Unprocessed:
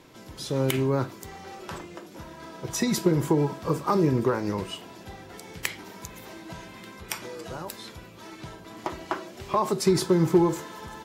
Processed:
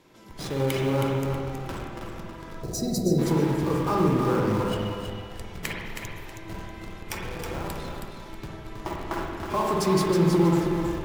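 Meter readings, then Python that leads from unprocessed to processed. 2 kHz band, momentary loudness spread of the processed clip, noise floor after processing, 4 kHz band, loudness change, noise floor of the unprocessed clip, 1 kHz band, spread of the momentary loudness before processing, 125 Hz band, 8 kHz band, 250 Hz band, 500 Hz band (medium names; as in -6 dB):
+1.5 dB, 18 LU, -42 dBFS, -0.5 dB, +0.5 dB, -47 dBFS, +1.5 dB, 20 LU, +2.5 dB, -2.0 dB, +1.5 dB, +0.5 dB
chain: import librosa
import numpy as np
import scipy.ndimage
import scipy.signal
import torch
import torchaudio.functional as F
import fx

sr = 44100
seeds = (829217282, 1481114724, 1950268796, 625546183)

p1 = fx.schmitt(x, sr, flips_db=-33.0)
p2 = x + (p1 * 10.0 ** (-3.5 / 20.0))
p3 = fx.echo_feedback(p2, sr, ms=320, feedback_pct=27, wet_db=-6.0)
p4 = fx.spec_box(p3, sr, start_s=2.63, length_s=0.56, low_hz=790.0, high_hz=3800.0, gain_db=-23)
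p5 = fx.rev_spring(p4, sr, rt60_s=1.4, pass_ms=(47, 52, 58), chirp_ms=80, drr_db=-1.5)
y = p5 * 10.0 ** (-6.0 / 20.0)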